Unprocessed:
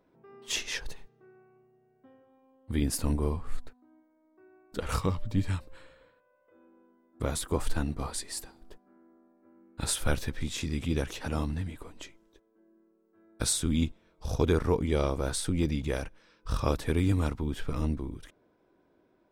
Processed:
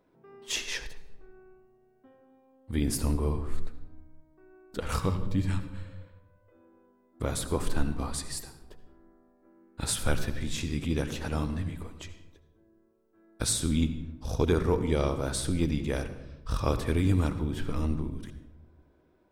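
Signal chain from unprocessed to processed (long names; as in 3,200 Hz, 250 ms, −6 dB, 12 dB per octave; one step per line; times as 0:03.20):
on a send at −10.5 dB: convolution reverb RT60 0.80 s, pre-delay 66 ms
0:00.83–0:02.73: on the sum: downward compressor 4 to 1, threshold −36 dBFS, peak gain reduction 6 dB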